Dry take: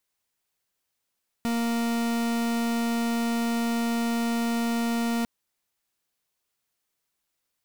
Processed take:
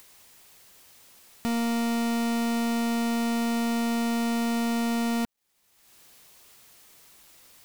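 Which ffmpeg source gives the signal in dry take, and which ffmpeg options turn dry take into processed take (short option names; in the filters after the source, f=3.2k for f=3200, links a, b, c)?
-f lavfi -i "aevalsrc='0.0501*(2*lt(mod(233*t,1),0.43)-1)':d=3.8:s=44100"
-af "acompressor=mode=upward:threshold=-33dB:ratio=2.5,acrusher=bits=11:mix=0:aa=0.000001,equalizer=f=1.5k:w=6.9:g=-3"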